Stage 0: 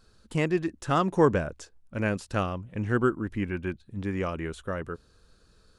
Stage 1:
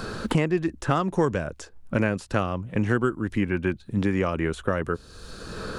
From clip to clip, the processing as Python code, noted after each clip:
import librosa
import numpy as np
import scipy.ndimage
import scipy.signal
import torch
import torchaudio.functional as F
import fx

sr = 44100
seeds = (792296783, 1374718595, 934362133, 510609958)

y = fx.band_squash(x, sr, depth_pct=100)
y = F.gain(torch.from_numpy(y), 2.5).numpy()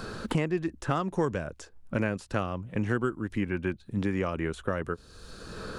y = fx.end_taper(x, sr, db_per_s=540.0)
y = F.gain(torch.from_numpy(y), -5.0).numpy()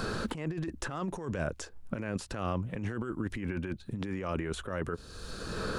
y = fx.over_compress(x, sr, threshold_db=-34.0, ratio=-1.0)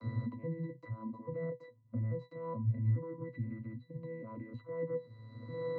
y = fx.vocoder_arp(x, sr, chord='bare fifth', root=45, every_ms=421)
y = fx.octave_resonator(y, sr, note='B', decay_s=0.13)
y = F.gain(torch.from_numpy(y), 8.0).numpy()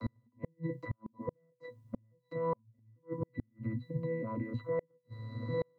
y = fx.gate_flip(x, sr, shuts_db=-32.0, range_db=-40)
y = F.gain(torch.from_numpy(y), 8.0).numpy()